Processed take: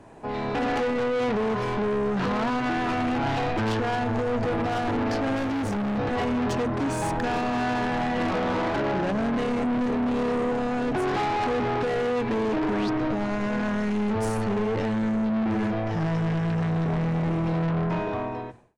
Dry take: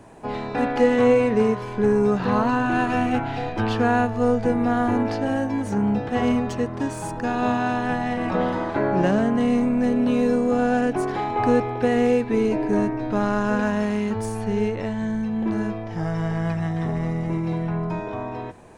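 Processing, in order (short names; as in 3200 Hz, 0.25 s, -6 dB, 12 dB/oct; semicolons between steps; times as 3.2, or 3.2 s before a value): ending faded out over 1.09 s; high shelf 8500 Hz -10.5 dB; notches 60/120/180/240 Hz; limiter -18.5 dBFS, peak gain reduction 11.5 dB; AGC gain up to 11 dB; 5.36–5.98 hard clip -21.5 dBFS, distortion -17 dB; 12.63–12.9 painted sound rise 590–5300 Hz -32 dBFS; soft clip -21 dBFS, distortion -8 dB; gain -2 dB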